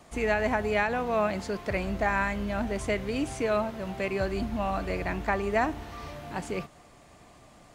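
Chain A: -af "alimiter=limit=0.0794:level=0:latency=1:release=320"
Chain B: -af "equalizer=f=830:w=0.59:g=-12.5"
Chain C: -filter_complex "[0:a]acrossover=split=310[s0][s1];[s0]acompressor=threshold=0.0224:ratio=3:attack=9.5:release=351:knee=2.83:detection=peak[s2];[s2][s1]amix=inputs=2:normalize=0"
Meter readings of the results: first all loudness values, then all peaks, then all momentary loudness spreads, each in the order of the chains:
-34.0 LUFS, -35.5 LUFS, -30.0 LUFS; -22.0 dBFS, -20.0 dBFS, -12.0 dBFS; 6 LU, 8 LU, 10 LU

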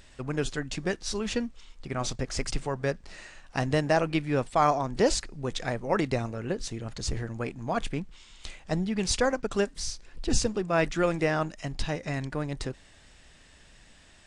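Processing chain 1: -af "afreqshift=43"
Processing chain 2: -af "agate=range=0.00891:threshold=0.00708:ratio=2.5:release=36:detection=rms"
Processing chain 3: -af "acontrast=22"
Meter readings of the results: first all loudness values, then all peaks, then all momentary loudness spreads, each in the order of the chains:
-29.5 LUFS, -29.5 LUFS, -25.0 LUFS; -9.5 dBFS, -9.5 dBFS, -5.5 dBFS; 11 LU, 11 LU, 11 LU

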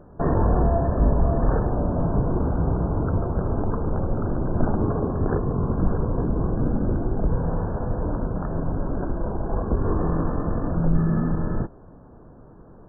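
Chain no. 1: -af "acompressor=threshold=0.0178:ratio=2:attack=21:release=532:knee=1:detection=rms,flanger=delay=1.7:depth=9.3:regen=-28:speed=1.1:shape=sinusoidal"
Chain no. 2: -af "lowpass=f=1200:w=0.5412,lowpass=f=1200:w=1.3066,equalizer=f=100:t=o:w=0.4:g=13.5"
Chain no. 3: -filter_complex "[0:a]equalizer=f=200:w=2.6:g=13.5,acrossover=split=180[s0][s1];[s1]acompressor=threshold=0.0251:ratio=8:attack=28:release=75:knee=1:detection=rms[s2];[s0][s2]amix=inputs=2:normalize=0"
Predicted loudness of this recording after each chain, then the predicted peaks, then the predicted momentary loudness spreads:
-38.0 LUFS, -21.0 LUFS, -23.5 LUFS; -21.5 dBFS, -5.5 dBFS, -7.0 dBFS; 4 LU, 6 LU, 5 LU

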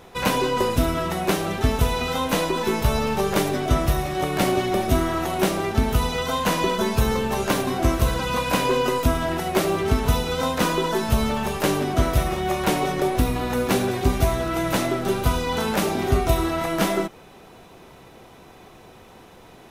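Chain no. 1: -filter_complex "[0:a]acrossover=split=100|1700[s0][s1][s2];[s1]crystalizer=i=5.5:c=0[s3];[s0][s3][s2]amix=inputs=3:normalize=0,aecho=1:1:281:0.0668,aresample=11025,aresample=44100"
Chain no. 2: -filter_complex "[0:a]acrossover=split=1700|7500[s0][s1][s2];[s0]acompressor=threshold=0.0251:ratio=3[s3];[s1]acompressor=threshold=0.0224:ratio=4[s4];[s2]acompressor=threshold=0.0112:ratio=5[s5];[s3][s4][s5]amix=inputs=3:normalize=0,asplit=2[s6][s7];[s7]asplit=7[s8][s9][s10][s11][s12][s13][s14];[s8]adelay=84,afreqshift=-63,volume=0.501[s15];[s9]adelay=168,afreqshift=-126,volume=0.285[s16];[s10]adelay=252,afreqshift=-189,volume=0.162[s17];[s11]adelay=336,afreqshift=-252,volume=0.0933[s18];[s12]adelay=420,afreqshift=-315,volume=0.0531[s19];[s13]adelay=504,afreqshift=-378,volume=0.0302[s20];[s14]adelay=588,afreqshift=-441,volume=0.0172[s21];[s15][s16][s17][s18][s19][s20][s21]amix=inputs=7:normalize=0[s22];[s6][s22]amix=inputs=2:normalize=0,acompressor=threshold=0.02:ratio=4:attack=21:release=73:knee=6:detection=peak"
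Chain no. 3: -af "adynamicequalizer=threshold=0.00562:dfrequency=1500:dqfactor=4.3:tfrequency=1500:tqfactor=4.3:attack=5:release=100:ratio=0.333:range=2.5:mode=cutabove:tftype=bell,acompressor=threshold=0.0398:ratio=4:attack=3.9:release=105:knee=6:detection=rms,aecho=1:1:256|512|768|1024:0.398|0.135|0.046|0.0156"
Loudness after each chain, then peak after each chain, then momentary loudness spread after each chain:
-22.0 LUFS, -33.5 LUFS, -30.5 LUFS; -5.0 dBFS, -19.0 dBFS, -16.0 dBFS; 2 LU, 13 LU, 15 LU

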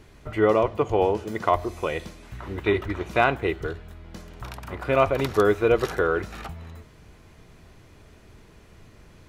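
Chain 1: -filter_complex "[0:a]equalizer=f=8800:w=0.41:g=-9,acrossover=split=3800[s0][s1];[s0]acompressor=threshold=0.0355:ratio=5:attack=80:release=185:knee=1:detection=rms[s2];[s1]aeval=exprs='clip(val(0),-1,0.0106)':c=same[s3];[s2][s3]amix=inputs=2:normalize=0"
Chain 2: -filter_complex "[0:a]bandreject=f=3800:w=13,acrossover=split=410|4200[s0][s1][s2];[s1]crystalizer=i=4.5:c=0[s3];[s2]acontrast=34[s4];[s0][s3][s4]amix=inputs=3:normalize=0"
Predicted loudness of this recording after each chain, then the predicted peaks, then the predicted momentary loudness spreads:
-32.0 LUFS, -23.0 LUFS; -9.5 dBFS, -2.0 dBFS; 12 LU, 19 LU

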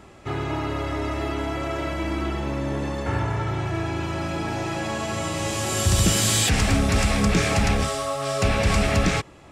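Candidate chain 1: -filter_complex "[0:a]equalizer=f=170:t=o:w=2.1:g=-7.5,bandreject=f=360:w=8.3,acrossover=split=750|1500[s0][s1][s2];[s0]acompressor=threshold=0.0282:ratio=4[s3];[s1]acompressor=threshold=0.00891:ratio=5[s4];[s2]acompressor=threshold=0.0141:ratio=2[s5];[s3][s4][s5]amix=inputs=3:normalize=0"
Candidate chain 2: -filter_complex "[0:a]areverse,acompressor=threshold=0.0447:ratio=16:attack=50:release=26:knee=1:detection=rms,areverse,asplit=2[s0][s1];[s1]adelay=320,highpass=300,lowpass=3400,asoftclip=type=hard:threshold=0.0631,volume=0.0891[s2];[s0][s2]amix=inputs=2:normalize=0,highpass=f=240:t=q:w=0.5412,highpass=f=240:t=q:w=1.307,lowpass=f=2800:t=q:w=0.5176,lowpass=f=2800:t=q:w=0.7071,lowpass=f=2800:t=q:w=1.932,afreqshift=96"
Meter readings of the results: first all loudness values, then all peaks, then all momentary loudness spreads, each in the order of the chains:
-31.0 LUFS, -29.5 LUFS; -17.5 dBFS, -16.5 dBFS; 5 LU, 3 LU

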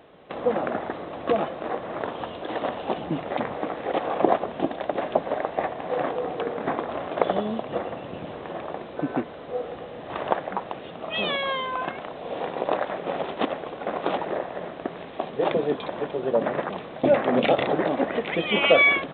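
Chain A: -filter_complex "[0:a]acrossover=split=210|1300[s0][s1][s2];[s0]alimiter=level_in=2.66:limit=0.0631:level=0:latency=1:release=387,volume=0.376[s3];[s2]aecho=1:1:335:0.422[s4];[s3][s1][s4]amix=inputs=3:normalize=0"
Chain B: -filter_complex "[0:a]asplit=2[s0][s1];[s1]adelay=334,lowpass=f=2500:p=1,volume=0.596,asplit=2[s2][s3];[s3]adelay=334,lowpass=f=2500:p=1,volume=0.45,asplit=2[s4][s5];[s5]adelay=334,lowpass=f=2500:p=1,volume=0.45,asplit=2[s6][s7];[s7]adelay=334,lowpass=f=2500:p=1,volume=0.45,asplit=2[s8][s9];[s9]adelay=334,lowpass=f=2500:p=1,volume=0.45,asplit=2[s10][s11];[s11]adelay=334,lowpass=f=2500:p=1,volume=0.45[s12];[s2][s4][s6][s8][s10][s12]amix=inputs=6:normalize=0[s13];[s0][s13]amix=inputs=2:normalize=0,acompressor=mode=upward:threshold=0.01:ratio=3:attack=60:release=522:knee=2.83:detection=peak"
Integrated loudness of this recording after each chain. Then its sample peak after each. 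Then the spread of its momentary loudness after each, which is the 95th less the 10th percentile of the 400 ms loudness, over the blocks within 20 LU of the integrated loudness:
-27.0 LUFS, -25.5 LUFS; -2.5 dBFS, -3.5 dBFS; 12 LU, 11 LU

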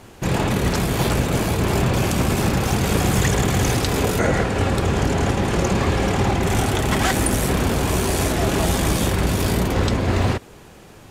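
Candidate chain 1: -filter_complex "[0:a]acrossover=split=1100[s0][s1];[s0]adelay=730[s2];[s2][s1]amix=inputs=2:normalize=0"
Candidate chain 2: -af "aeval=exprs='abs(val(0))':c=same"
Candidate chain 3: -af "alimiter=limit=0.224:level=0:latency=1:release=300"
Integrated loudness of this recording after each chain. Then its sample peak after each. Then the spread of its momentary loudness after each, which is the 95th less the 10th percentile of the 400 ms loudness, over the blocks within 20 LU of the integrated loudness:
-20.5 LUFS, -24.0 LUFS, -24.0 LUFS; -6.0 dBFS, -6.5 dBFS, -13.0 dBFS; 2 LU, 2 LU, 1 LU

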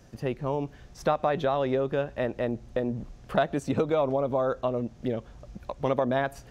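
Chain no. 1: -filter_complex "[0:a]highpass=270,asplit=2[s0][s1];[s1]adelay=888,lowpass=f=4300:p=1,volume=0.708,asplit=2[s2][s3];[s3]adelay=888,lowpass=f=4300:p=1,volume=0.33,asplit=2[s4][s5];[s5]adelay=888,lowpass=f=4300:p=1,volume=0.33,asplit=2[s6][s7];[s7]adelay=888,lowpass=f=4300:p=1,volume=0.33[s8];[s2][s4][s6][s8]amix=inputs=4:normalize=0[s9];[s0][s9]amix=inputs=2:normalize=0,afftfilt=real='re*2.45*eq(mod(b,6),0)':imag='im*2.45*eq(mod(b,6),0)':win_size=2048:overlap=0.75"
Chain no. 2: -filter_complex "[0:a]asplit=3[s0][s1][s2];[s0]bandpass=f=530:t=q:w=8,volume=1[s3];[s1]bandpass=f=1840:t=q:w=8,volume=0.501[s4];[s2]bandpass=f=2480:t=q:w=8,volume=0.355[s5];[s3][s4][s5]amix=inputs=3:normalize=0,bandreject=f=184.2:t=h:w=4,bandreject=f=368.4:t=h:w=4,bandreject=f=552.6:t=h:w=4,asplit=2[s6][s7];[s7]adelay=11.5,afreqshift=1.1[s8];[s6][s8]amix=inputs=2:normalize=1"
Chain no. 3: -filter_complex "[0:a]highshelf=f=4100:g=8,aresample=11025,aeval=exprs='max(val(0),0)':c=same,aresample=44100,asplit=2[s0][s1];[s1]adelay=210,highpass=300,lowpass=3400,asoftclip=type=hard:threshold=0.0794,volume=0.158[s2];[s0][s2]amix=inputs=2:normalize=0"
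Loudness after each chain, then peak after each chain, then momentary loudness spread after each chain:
-30.0 LUFS, -39.0 LUFS, -34.0 LUFS; -12.5 dBFS, -22.5 dBFS, -13.5 dBFS; 9 LU, 11 LU, 9 LU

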